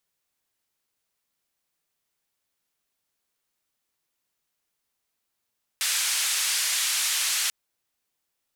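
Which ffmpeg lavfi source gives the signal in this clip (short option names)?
-f lavfi -i "anoisesrc=c=white:d=1.69:r=44100:seed=1,highpass=f=1700,lowpass=f=9700,volume=-16.3dB"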